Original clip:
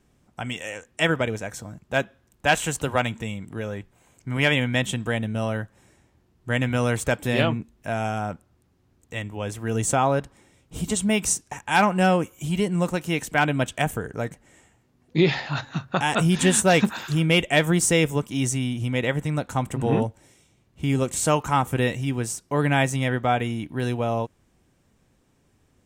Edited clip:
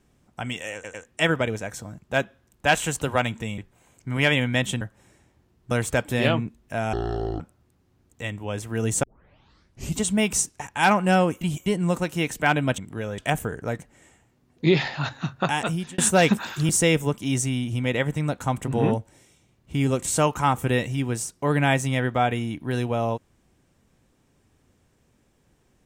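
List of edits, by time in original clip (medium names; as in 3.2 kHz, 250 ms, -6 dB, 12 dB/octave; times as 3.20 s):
0.74 s: stutter 0.10 s, 3 plays
3.38–3.78 s: move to 13.70 s
5.01–5.59 s: delete
6.49–6.85 s: delete
8.07–8.32 s: speed 53%
9.95 s: tape start 0.95 s
12.33–12.58 s: reverse
15.97–16.50 s: fade out
17.21–17.78 s: delete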